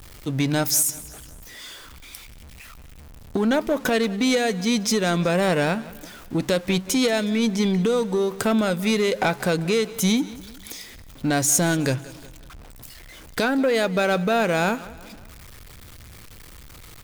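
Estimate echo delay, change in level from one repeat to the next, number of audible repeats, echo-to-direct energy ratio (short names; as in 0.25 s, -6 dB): 0.183 s, -6.5 dB, 3, -18.0 dB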